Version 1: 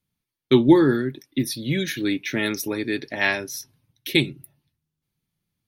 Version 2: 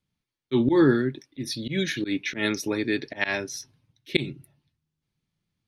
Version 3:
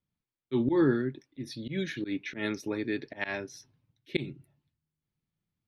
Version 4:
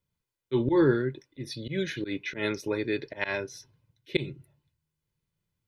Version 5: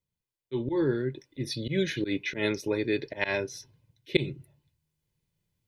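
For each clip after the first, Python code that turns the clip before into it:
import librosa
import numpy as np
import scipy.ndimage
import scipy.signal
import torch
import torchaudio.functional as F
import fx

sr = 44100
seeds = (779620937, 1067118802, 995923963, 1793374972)

y1 = scipy.signal.sosfilt(scipy.signal.butter(2, 6800.0, 'lowpass', fs=sr, output='sos'), x)
y1 = fx.auto_swell(y1, sr, attack_ms=111.0)
y2 = fx.high_shelf(y1, sr, hz=3600.0, db=-10.5)
y2 = F.gain(torch.from_numpy(y2), -5.5).numpy()
y3 = y2 + 0.5 * np.pad(y2, (int(2.0 * sr / 1000.0), 0))[:len(y2)]
y3 = F.gain(torch.from_numpy(y3), 3.0).numpy()
y4 = fx.peak_eq(y3, sr, hz=1300.0, db=-6.5, octaves=0.61)
y4 = fx.rider(y4, sr, range_db=5, speed_s=0.5)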